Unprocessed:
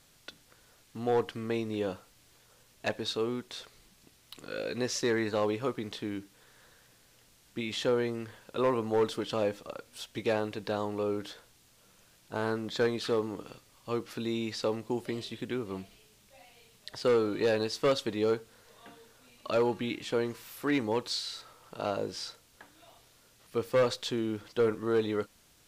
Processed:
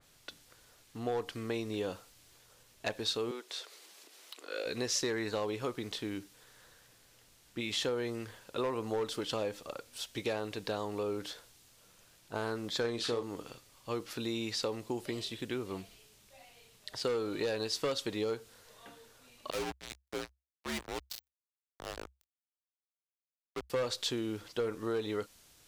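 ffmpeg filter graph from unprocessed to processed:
ffmpeg -i in.wav -filter_complex "[0:a]asettb=1/sr,asplit=3[link_01][link_02][link_03];[link_01]atrim=end=3.314[link_04];[link_02]atrim=start=3.31:end=4.66,asetpts=PTS-STARTPTS,afade=type=in:duration=0.004:curve=qsin,afade=type=out:start_time=1.346:duration=0.004:curve=qsin,highshelf=frequency=7700:gain=-4,acompressor=mode=upward:threshold=-45dB:ratio=2.5:attack=3.2:release=140:knee=2.83:detection=peak,highpass=frequency=340:width=0.5412,highpass=frequency=340:width=1.3066[link_05];[link_03]atrim=start=4.656[link_06];[link_04][link_05]acrossfade=duration=0.004:curve1=hsin:curve2=qsin[link_07];[link_07][link_06]acrossfade=duration=0.004:curve1=qsin:curve2=hsin,asettb=1/sr,asplit=3[link_08][link_09][link_10];[link_08]atrim=end=12.814[link_11];[link_09]atrim=start=12.81:end=13.23,asetpts=PTS-STARTPTS,afade=type=in:duration=0.004:curve=qsin,afade=type=out:start_time=0.416:duration=0.004:curve=qsin,lowpass=11000,asplit=2[link_12][link_13];[link_13]adelay=34,volume=-6.5dB[link_14];[link_12][link_14]amix=inputs=2:normalize=0,atrim=end_sample=18522[link_15];[link_10]atrim=start=13.226[link_16];[link_11][link_15]acrossfade=duration=0.004:curve1=hsin:curve2=qsin[link_17];[link_17][link_16]acrossfade=duration=0.004:curve1=qsin:curve2=hsin,asettb=1/sr,asplit=3[link_18][link_19][link_20];[link_18]atrim=end=19.504[link_21];[link_19]atrim=start=19.5:end=23.7,asetpts=PTS-STARTPTS,afade=type=in:duration=0.004:curve=qsin,afade=type=out:start_time=4.196:duration=0.004:curve=qsin,acrusher=bits=3:mix=0:aa=0.5,asoftclip=type=hard:threshold=-29dB,afreqshift=-66[link_22];[link_20]atrim=start=23.696[link_23];[link_21][link_22]acrossfade=duration=0.004:curve1=hsin:curve2=qsin[link_24];[link_24][link_23]acrossfade=duration=0.004:curve1=qsin:curve2=hsin,equalizer=frequency=200:width_type=o:width=0.86:gain=-3,acompressor=threshold=-30dB:ratio=4,adynamicequalizer=threshold=0.00355:dfrequency=3000:dqfactor=0.7:tfrequency=3000:tqfactor=0.7:attack=5:release=100:ratio=0.375:range=2.5:mode=boostabove:tftype=highshelf,volume=-1dB" out.wav

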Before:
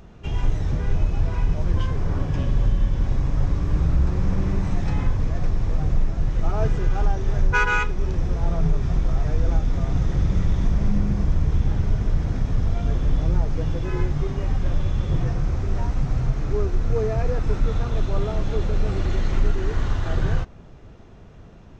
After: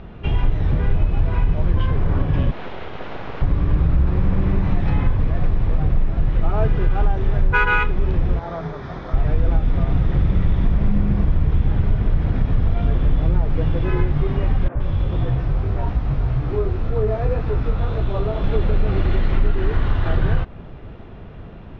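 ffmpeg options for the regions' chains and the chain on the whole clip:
ffmpeg -i in.wav -filter_complex "[0:a]asettb=1/sr,asplit=3[link_01][link_02][link_03];[link_01]atrim=end=2.514[link_04];[link_02]atrim=start=2.51:end=3.42,asetpts=PTS-STARTPTS,afade=type=in:duration=0.004:curve=qsin,afade=type=out:start_time=0.906:duration=0.004:curve=qsin,highpass=frequency=200:width=0.5412,highpass=frequency=200:width=1.3066,aeval=exprs='abs(val(0))':channel_layout=same[link_05];[link_03]atrim=start=3.416[link_06];[link_04][link_05]acrossfade=duration=0.004:curve1=hsin:curve2=qsin[link_07];[link_07][link_06]acrossfade=duration=0.004:curve1=qsin:curve2=hsin,asettb=1/sr,asplit=3[link_08][link_09][link_10];[link_08]atrim=end=8.394[link_11];[link_09]atrim=start=8.39:end=9.14,asetpts=PTS-STARTPTS,afade=type=in:duration=0.004:curve=qsin,afade=type=out:start_time=0.746:duration=0.004:curve=qsin,highpass=frequency=730:poles=1,equalizer=frequency=2700:width=3:gain=-12[link_12];[link_10]atrim=start=9.136[link_13];[link_11][link_12]acrossfade=duration=0.004:curve1=hsin:curve2=qsin[link_14];[link_14][link_13]acrossfade=duration=0.004:curve1=qsin:curve2=hsin,asettb=1/sr,asplit=3[link_15][link_16][link_17];[link_15]atrim=end=14.684[link_18];[link_16]atrim=start=14.68:end=18.44,asetpts=PTS-STARTPTS,afade=type=in:duration=0.004:curve=qsin,afade=type=out:start_time=3.756:duration=0.004:curve=qsin,flanger=delay=15.5:depth=5.9:speed=1.8,acrossover=split=200|2000[link_19][link_20][link_21];[link_19]adelay=70[link_22];[link_21]adelay=120[link_23];[link_22][link_20][link_23]amix=inputs=3:normalize=0,atrim=end_sample=165816[link_24];[link_17]atrim=start=18.436[link_25];[link_18][link_24]acrossfade=duration=0.004:curve1=hsin:curve2=qsin[link_26];[link_26][link_25]acrossfade=duration=0.004:curve1=qsin:curve2=hsin,lowpass=frequency=3600:width=0.5412,lowpass=frequency=3600:width=1.3066,acompressor=threshold=-24dB:ratio=2,volume=8dB" out.wav

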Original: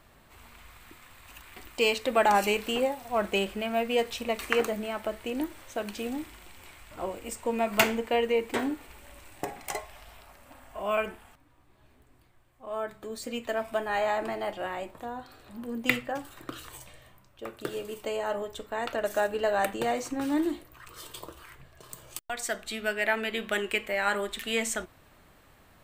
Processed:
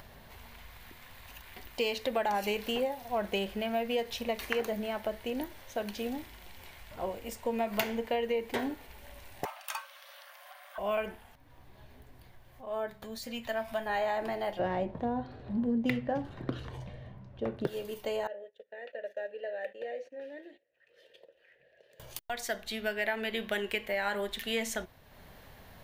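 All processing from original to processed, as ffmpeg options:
ffmpeg -i in.wav -filter_complex "[0:a]asettb=1/sr,asplit=3[link_01][link_02][link_03];[link_01]atrim=end=9.454[link_04];[link_02]atrim=start=9.45:end=10.78,asetpts=PTS-STARTPTS,afade=type=in:duration=0.004:curve=qsin,afade=type=out:start_time=1.326:duration=0.004:curve=qsin,highpass=frequency=83:width=0.5412,highpass=frequency=83:width=1.3066,afreqshift=480[link_05];[link_03]atrim=start=10.776[link_06];[link_04][link_05]acrossfade=duration=0.004:curve1=hsin:curve2=qsin[link_07];[link_07][link_06]acrossfade=duration=0.004:curve1=qsin:curve2=hsin,asettb=1/sr,asplit=3[link_08][link_09][link_10];[link_08]atrim=end=13.024[link_11];[link_09]atrim=start=13.02:end=13.86,asetpts=PTS-STARTPTS,afade=type=in:duration=0.004:curve=qsin,afade=type=out:start_time=0.836:duration=0.004:curve=qsin,equalizer=frequency=390:width=1.6:gain=-11,acompressor=mode=upward:threshold=-36dB:ratio=2.5:attack=3.2:release=140:knee=2.83:detection=peak,asplit=2[link_12][link_13];[link_13]adelay=18,volume=-13dB[link_14];[link_12][link_14]amix=inputs=2:normalize=0,atrim=end_sample=37044[link_15];[link_10]atrim=start=13.856[link_16];[link_11][link_15]acrossfade=duration=0.004:curve1=hsin:curve2=qsin[link_17];[link_17][link_16]acrossfade=duration=0.004:curve1=qsin:curve2=hsin,asettb=1/sr,asplit=3[link_18][link_19][link_20];[link_18]atrim=end=14.594[link_21];[link_19]atrim=start=14.59:end=17.67,asetpts=PTS-STARTPTS,afade=type=in:duration=0.004:curve=qsin,afade=type=out:start_time=3.076:duration=0.004:curve=qsin,equalizer=frequency=160:width=0.34:gain=14.5,adynamicsmooth=sensitivity=4:basefreq=3800[link_22];[link_20]atrim=start=17.666[link_23];[link_21][link_22]acrossfade=duration=0.004:curve1=hsin:curve2=qsin[link_24];[link_24][link_23]acrossfade=duration=0.004:curve1=qsin:curve2=hsin,asettb=1/sr,asplit=3[link_25][link_26][link_27];[link_25]atrim=end=18.274[link_28];[link_26]atrim=start=18.27:end=22,asetpts=PTS-STARTPTS,afade=type=in:duration=0.004:curve=qsin,afade=type=out:start_time=3.726:duration=0.004:curve=qsin,agate=range=-16dB:threshold=-40dB:ratio=16:release=100:detection=peak,asplit=3[link_29][link_30][link_31];[link_29]bandpass=frequency=530:width_type=q:width=8,volume=0dB[link_32];[link_30]bandpass=frequency=1840:width_type=q:width=8,volume=-6dB[link_33];[link_31]bandpass=frequency=2480:width_type=q:width=8,volume=-9dB[link_34];[link_32][link_33][link_34]amix=inputs=3:normalize=0,equalizer=frequency=90:width=3.2:gain=-14.5[link_35];[link_27]atrim=start=21.996[link_36];[link_28][link_35]acrossfade=duration=0.004:curve1=hsin:curve2=qsin[link_37];[link_37][link_36]acrossfade=duration=0.004:curve1=qsin:curve2=hsin,acompressor=mode=upward:threshold=-43dB:ratio=2.5,equalizer=frequency=315:width_type=o:width=0.33:gain=-9,equalizer=frequency=1250:width_type=o:width=0.33:gain=-9,equalizer=frequency=2500:width_type=o:width=0.33:gain=-4,equalizer=frequency=8000:width_type=o:width=0.33:gain=-12,acompressor=threshold=-27dB:ratio=6" out.wav

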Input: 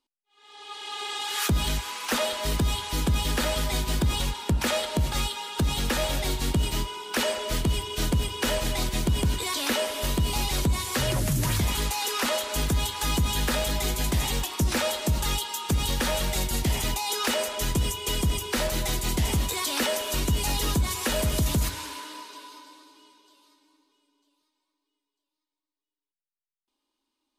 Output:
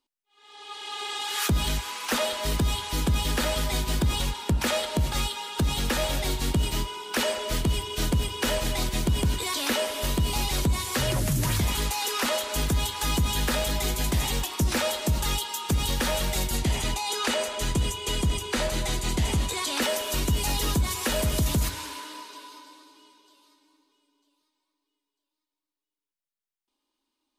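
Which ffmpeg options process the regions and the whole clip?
ffmpeg -i in.wav -filter_complex "[0:a]asettb=1/sr,asplit=3[link_01][link_02][link_03];[link_01]atrim=end=16.574[link_04];[link_02]atrim=start=16.57:end=19.82,asetpts=PTS-STARTPTS,afade=type=in:duration=0.004:curve=qsin,afade=type=out:start_time=3.246:duration=0.004:curve=qsin,lowpass=9800,bandreject=frequency=5400:width=14[link_05];[link_03]atrim=start=19.816[link_06];[link_04][link_05]acrossfade=duration=0.004:curve1=hsin:curve2=qsin[link_07];[link_07][link_06]acrossfade=duration=0.004:curve1=qsin:curve2=hsin" out.wav

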